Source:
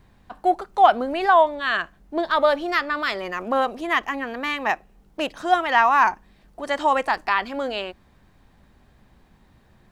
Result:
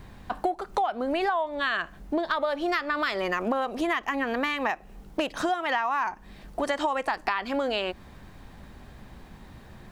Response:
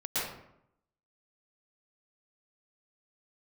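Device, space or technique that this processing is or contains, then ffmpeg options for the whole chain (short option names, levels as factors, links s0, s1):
serial compression, peaks first: -filter_complex "[0:a]asettb=1/sr,asplit=3[s0][s1][s2];[s0]atrim=end=5.494[s3];[s1]atrim=start=5.49:end=6.07,asetpts=PTS-STARTPTS,afade=t=in:d=0.004:c=qsin,afade=t=out:st=0.576:d=0.004:c=qsin,highpass=96[s4];[s2]atrim=start=6.066[s5];[s3][s4]acrossfade=d=0.004:c1=hsin:c2=qsin[s6];[s6][s5]acrossfade=d=0.004:c1=qsin:c2=hsin,acompressor=threshold=0.0447:ratio=10,acompressor=threshold=0.0158:ratio=2,volume=2.82"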